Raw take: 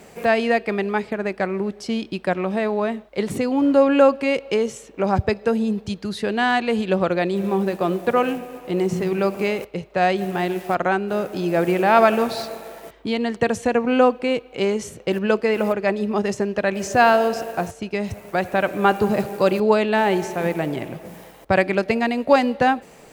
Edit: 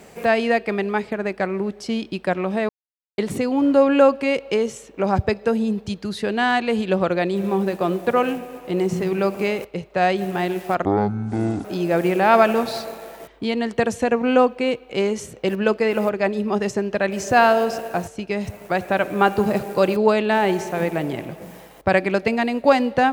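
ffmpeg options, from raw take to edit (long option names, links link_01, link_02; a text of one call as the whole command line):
ffmpeg -i in.wav -filter_complex "[0:a]asplit=5[link_01][link_02][link_03][link_04][link_05];[link_01]atrim=end=2.69,asetpts=PTS-STARTPTS,afade=type=out:start_time=2.686:duration=0.004:curve=hsin[link_06];[link_02]atrim=start=2.69:end=3.18,asetpts=PTS-STARTPTS,volume=0[link_07];[link_03]atrim=start=3.18:end=10.854,asetpts=PTS-STARTPTS,afade=type=in:duration=0.004:curve=hsin[link_08];[link_04]atrim=start=10.85:end=11.28,asetpts=PTS-STARTPTS,asetrate=23814,aresample=44100[link_09];[link_05]atrim=start=11.276[link_10];[link_06][link_07][link_08]concat=n=3:v=0:a=1[link_11];[link_11][link_09]acrossfade=duration=0.004:curve1=hsin:curve2=hsin[link_12];[link_12][link_10]acrossfade=duration=0.004:curve1=hsin:curve2=hsin" out.wav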